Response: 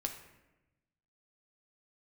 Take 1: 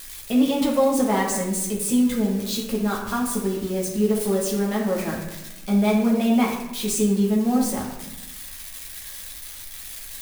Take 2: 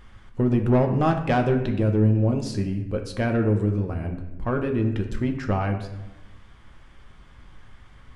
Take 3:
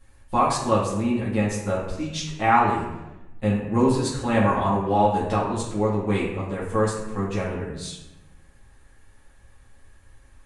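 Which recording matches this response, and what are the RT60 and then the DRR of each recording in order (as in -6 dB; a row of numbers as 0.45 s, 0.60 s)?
2; 1.0 s, 1.0 s, 1.0 s; -4.0 dB, 3.5 dB, -9.0 dB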